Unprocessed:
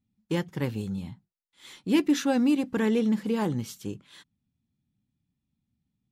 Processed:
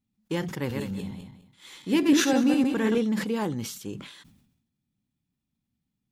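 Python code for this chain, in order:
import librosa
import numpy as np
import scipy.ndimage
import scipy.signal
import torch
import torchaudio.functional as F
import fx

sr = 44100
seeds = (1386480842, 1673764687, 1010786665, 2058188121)

y = fx.reverse_delay_fb(x, sr, ms=102, feedback_pct=41, wet_db=-3.0, at=(0.6, 2.98))
y = fx.peak_eq(y, sr, hz=92.0, db=-5.0, octaves=2.2)
y = fx.sustainer(y, sr, db_per_s=64.0)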